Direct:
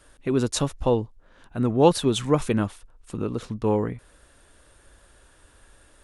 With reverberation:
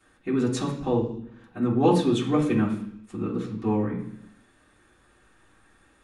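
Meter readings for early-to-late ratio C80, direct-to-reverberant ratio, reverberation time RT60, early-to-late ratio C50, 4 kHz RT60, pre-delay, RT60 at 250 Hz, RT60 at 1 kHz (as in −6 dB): 11.5 dB, −9.0 dB, 0.70 s, 7.0 dB, 0.95 s, 3 ms, 0.85 s, 0.65 s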